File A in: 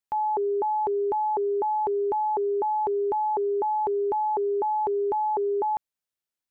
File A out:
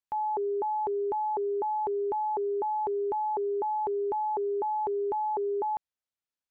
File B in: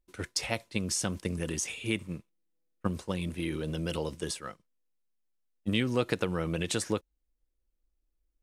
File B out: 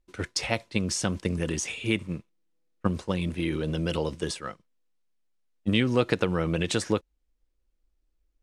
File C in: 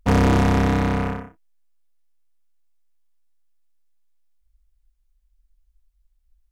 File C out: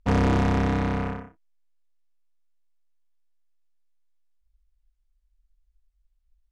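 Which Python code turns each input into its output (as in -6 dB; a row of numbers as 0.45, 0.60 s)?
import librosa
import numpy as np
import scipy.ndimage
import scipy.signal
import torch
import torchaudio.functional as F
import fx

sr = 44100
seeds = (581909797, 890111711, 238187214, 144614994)

y = fx.air_absorb(x, sr, metres=51.0)
y = y * 10.0 ** (-30 / 20.0) / np.sqrt(np.mean(np.square(y)))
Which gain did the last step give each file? -4.0, +5.0, -4.5 dB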